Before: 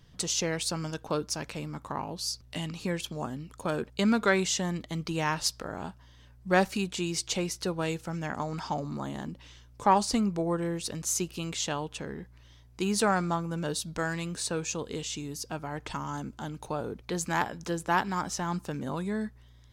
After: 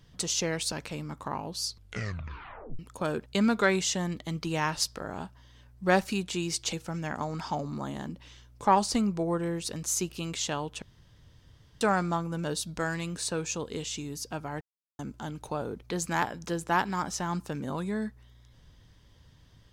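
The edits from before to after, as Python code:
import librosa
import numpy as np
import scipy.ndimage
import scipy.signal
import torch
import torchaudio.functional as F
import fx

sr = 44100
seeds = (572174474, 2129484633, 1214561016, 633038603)

y = fx.edit(x, sr, fx.cut(start_s=0.72, length_s=0.64),
    fx.tape_stop(start_s=2.28, length_s=1.15),
    fx.cut(start_s=7.37, length_s=0.55),
    fx.room_tone_fill(start_s=12.01, length_s=0.99),
    fx.silence(start_s=15.8, length_s=0.38), tone=tone)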